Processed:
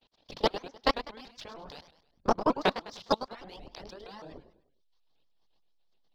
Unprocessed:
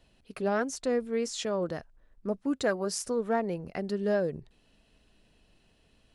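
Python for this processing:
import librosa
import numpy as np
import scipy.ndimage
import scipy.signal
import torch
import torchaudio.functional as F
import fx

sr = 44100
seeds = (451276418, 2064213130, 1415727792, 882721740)

p1 = fx.spec_clip(x, sr, under_db=30)
p2 = scipy.signal.sosfilt(scipy.signal.butter(6, 5100.0, 'lowpass', fs=sr, output='sos'), p1)
p3 = fx.band_shelf(p2, sr, hz=1800.0, db=-10.0, octaves=1.3)
p4 = fx.transient(p3, sr, attack_db=11, sustain_db=-3)
p5 = fx.hum_notches(p4, sr, base_hz=50, count=6)
p6 = fx.chorus_voices(p5, sr, voices=6, hz=0.68, base_ms=22, depth_ms=4.0, mix_pct=45)
p7 = fx.backlash(p6, sr, play_db=-37.0)
p8 = p6 + (p7 * librosa.db_to_amplitude(-4.0))
p9 = fx.level_steps(p8, sr, step_db=23)
p10 = fx.dereverb_blind(p9, sr, rt60_s=0.88)
p11 = p10 + fx.echo_feedback(p10, sr, ms=101, feedback_pct=41, wet_db=-12.0, dry=0)
p12 = fx.vibrato_shape(p11, sr, shape='saw_up', rate_hz=6.4, depth_cents=250.0)
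y = p12 * librosa.db_to_amplitude(1.5)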